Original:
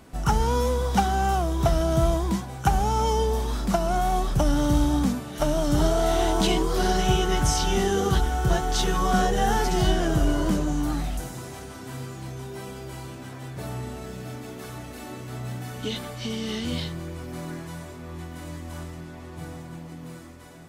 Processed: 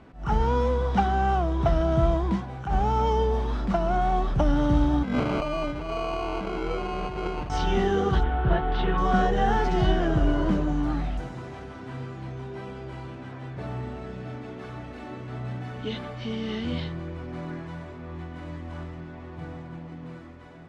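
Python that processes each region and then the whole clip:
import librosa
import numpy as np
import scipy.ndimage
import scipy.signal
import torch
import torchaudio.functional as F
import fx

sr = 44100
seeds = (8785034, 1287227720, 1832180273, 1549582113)

y = fx.chain(x, sr, fx.over_compress(threshold_db=-31.0, ratio=-1.0),
    fx.peak_eq(hz=550.0, db=7.0, octaves=1.1),
    fx.sample_hold(seeds[0], rate_hz=1800.0, jitter_pct=0), at=(5.03, 7.5))
y = fx.chain(y, sr, fx.lowpass(hz=3600.0, slope=24),
    fx.doppler_dist(depth_ms=0.17), at=(8.23, 8.98))
y = scipy.signal.sosfilt(scipy.signal.butter(2, 2700.0, 'lowpass', fs=sr, output='sos'), y)
y = fx.attack_slew(y, sr, db_per_s=150.0)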